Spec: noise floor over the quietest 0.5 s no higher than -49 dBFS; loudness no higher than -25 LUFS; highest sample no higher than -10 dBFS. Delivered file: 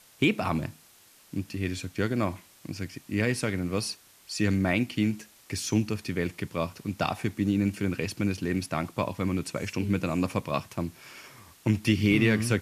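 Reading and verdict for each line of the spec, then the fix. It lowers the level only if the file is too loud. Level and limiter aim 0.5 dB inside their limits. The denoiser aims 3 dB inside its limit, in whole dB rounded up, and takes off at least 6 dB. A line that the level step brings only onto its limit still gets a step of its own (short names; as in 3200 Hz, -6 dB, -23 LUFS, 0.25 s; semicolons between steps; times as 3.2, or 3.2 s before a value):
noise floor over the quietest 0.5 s -57 dBFS: OK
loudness -29.0 LUFS: OK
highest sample -11.5 dBFS: OK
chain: none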